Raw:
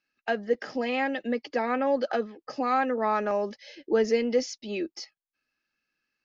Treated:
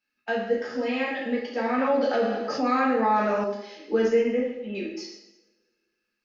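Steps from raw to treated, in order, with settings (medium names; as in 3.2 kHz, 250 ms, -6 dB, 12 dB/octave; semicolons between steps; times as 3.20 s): 4.08–4.75 s: steep low-pass 2.9 kHz 48 dB/octave; two-slope reverb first 0.81 s, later 2.1 s, from -26 dB, DRR -5 dB; 1.78–3.44 s: level flattener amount 50%; trim -5 dB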